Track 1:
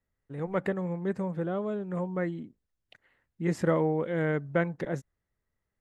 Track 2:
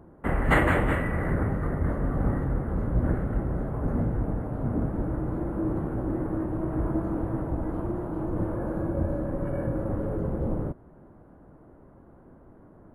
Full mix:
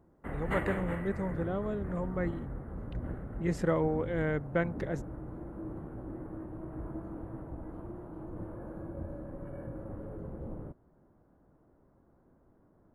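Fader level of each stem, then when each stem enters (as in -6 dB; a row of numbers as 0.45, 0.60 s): -3.0, -13.0 dB; 0.00, 0.00 s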